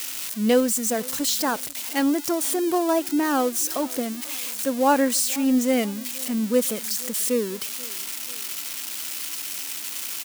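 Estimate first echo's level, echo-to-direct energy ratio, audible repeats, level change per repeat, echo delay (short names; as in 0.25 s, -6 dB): -23.0 dB, -22.0 dB, 2, -5.0 dB, 0.487 s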